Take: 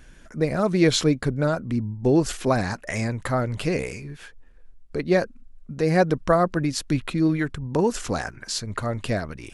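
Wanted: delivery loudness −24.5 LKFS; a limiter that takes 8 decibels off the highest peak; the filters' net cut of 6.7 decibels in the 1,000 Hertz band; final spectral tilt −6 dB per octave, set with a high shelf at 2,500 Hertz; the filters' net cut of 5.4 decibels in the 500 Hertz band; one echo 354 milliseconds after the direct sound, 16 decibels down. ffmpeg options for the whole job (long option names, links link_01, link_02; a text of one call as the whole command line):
ffmpeg -i in.wav -af "equalizer=frequency=500:width_type=o:gain=-5,equalizer=frequency=1000:width_type=o:gain=-7,highshelf=frequency=2500:gain=-4,alimiter=limit=-17.5dB:level=0:latency=1,aecho=1:1:354:0.158,volume=4.5dB" out.wav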